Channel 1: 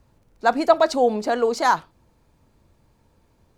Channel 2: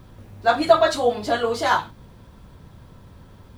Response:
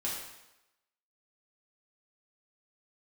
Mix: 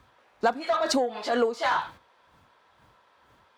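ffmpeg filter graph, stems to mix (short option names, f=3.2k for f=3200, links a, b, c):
-filter_complex "[0:a]acontrast=50,aeval=exprs='val(0)*pow(10,-26*(0.5-0.5*cos(2*PI*2.1*n/s))/20)':c=same,volume=2.5dB,asplit=2[a][b];[1:a]highpass=710,highshelf=f=8.9k:g=-9.5,asplit=2[c][d];[d]highpass=f=720:p=1,volume=16dB,asoftclip=type=tanh:threshold=-5.5dB[e];[c][e]amix=inputs=2:normalize=0,lowpass=f=2.4k:p=1,volume=-6dB,volume=-2.5dB[f];[b]apad=whole_len=157585[g];[f][g]sidechaincompress=threshold=-31dB:ratio=8:attack=16:release=101[h];[a][h]amix=inputs=2:normalize=0,highpass=59,agate=range=-9dB:threshold=-40dB:ratio=16:detection=peak,acompressor=threshold=-22dB:ratio=5"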